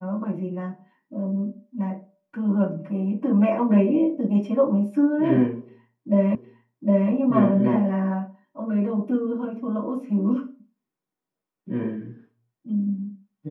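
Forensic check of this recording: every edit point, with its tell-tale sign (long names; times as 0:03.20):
0:06.35: the same again, the last 0.76 s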